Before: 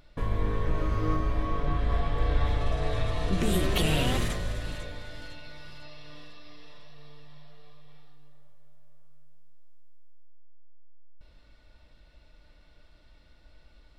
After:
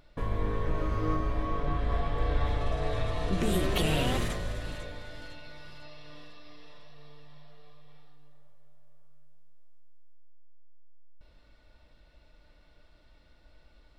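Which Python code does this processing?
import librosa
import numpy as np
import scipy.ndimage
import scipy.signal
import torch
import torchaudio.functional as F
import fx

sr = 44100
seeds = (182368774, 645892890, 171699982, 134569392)

y = fx.peak_eq(x, sr, hz=630.0, db=3.0, octaves=2.9)
y = y * 10.0 ** (-3.0 / 20.0)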